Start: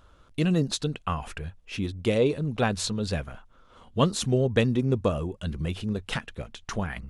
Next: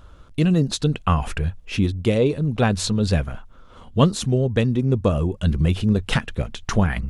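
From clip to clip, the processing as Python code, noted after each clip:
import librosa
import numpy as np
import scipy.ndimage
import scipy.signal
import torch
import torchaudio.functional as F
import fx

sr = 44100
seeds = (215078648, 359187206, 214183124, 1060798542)

y = fx.low_shelf(x, sr, hz=250.0, db=6.5)
y = fx.rider(y, sr, range_db=4, speed_s=0.5)
y = y * librosa.db_to_amplitude(3.5)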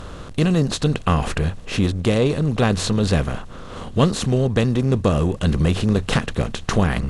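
y = fx.bin_compress(x, sr, power=0.6)
y = y * librosa.db_to_amplitude(-2.0)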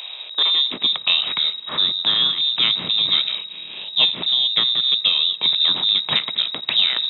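y = fx.echo_wet_highpass(x, sr, ms=86, feedback_pct=74, hz=1700.0, wet_db=-23.0)
y = fx.freq_invert(y, sr, carrier_hz=3800)
y = fx.filter_sweep_highpass(y, sr, from_hz=710.0, to_hz=160.0, start_s=0.11, end_s=1.02, q=1.9)
y = y * librosa.db_to_amplitude(-1.0)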